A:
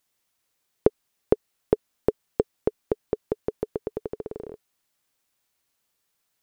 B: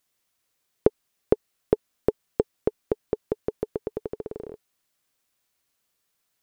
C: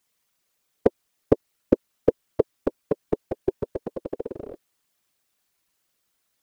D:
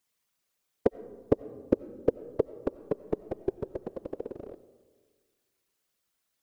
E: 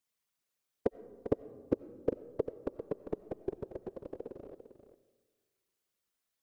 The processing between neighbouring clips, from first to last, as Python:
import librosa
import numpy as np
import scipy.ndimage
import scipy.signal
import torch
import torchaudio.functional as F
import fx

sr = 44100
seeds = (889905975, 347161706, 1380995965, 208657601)

y1 = fx.notch(x, sr, hz=870.0, q=15.0)
y2 = fx.whisperise(y1, sr, seeds[0])
y2 = F.gain(torch.from_numpy(y2), 1.5).numpy()
y3 = fx.rev_freeverb(y2, sr, rt60_s=1.6, hf_ratio=0.3, predelay_ms=50, drr_db=16.5)
y3 = F.gain(torch.from_numpy(y3), -5.5).numpy()
y4 = y3 + 10.0 ** (-10.5 / 20.0) * np.pad(y3, (int(398 * sr / 1000.0), 0))[:len(y3)]
y4 = F.gain(torch.from_numpy(y4), -6.5).numpy()